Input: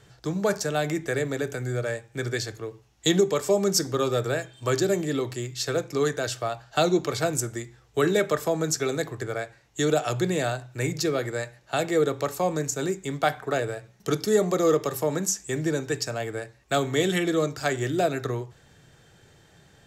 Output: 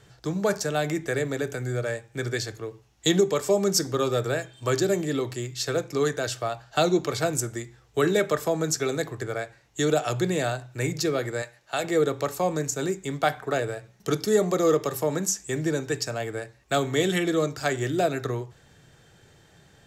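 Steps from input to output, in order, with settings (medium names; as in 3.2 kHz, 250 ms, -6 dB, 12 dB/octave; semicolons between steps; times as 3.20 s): 11.42–11.84 s: bass shelf 360 Hz -10.5 dB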